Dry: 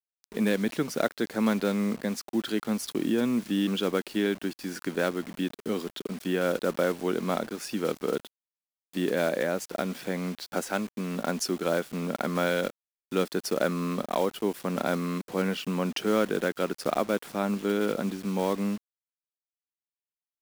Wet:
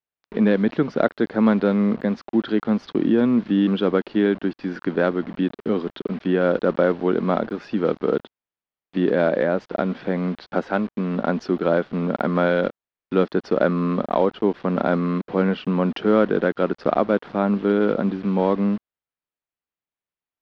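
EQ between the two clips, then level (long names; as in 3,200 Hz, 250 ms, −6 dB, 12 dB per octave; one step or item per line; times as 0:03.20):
low-pass filter 4,300 Hz 12 dB per octave
dynamic equaliser 2,400 Hz, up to −5 dB, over −51 dBFS, Q 1.8
high-frequency loss of the air 280 metres
+8.5 dB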